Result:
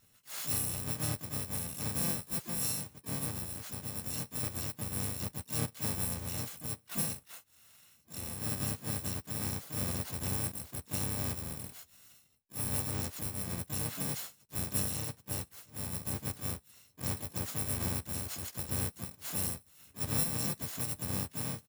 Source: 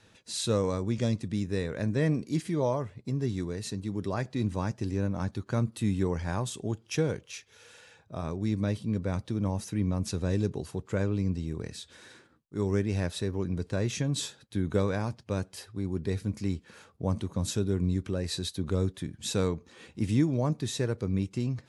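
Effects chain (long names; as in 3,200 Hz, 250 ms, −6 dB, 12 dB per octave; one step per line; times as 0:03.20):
samples in bit-reversed order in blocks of 128 samples
pitch-shifted copies added −5 semitones −7 dB, +5 semitones −3 dB, +12 semitones −10 dB
level −8.5 dB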